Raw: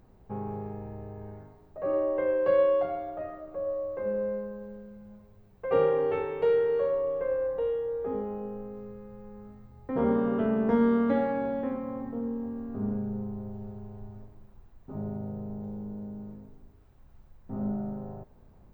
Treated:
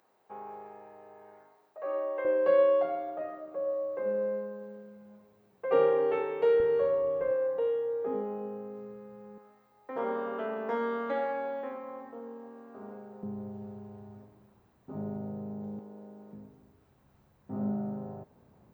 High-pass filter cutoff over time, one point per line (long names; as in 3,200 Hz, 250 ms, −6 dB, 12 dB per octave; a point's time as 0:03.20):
680 Hz
from 0:02.25 240 Hz
from 0:06.60 64 Hz
from 0:07.31 210 Hz
from 0:09.38 570 Hz
from 0:13.23 150 Hz
from 0:15.79 370 Hz
from 0:16.33 120 Hz